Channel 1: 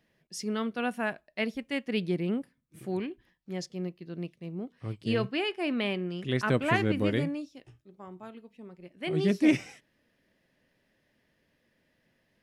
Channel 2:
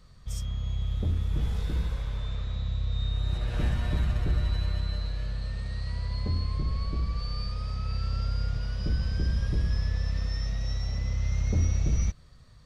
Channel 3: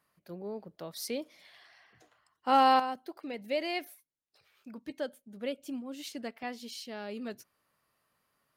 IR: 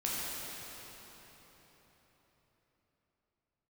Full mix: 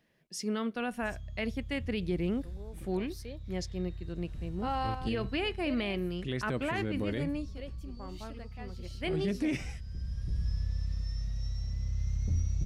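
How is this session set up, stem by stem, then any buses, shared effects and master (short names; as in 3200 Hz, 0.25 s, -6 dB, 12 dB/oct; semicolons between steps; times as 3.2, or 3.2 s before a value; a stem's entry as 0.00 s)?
-0.5 dB, 0.00 s, no send, dry
-16.5 dB, 0.75 s, no send, tone controls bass +12 dB, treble +11 dB; auto duck -9 dB, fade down 1.85 s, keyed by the first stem
-10.0 dB, 2.15 s, no send, high shelf 11000 Hz -7 dB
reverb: off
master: limiter -23 dBFS, peak gain reduction 10.5 dB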